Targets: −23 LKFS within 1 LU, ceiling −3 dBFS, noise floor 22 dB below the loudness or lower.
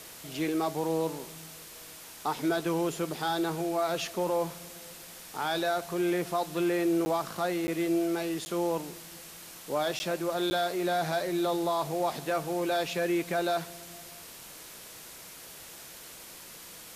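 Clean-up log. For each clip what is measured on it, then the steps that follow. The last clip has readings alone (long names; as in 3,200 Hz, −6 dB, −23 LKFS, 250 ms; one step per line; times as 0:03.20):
number of dropouts 5; longest dropout 10 ms; background noise floor −47 dBFS; target noise floor −53 dBFS; integrated loudness −30.5 LKFS; sample peak −19.0 dBFS; target loudness −23.0 LKFS
→ repair the gap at 0:07.05/0:07.67/0:08.45/0:09.99/0:10.50, 10 ms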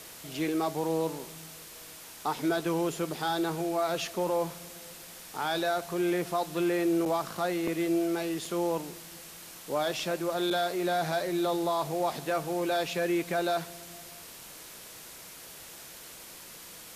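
number of dropouts 0; background noise floor −47 dBFS; target noise floor −53 dBFS
→ broadband denoise 6 dB, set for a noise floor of −47 dBFS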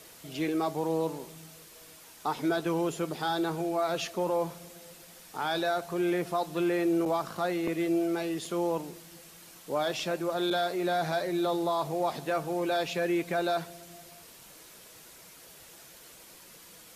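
background noise floor −52 dBFS; target noise floor −53 dBFS
→ broadband denoise 6 dB, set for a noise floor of −52 dBFS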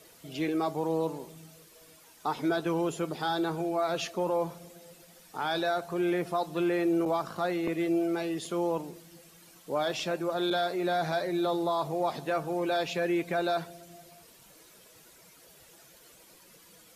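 background noise floor −57 dBFS; integrated loudness −30.5 LKFS; sample peak −19.5 dBFS; target loudness −23.0 LKFS
→ level +7.5 dB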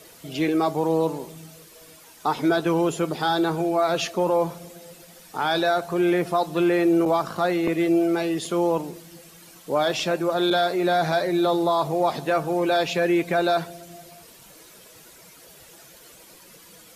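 integrated loudness −23.0 LKFS; sample peak −12.0 dBFS; background noise floor −49 dBFS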